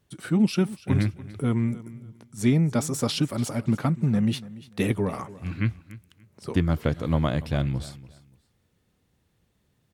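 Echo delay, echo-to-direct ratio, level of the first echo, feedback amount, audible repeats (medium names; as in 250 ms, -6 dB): 289 ms, -18.0 dB, -18.0 dB, 23%, 2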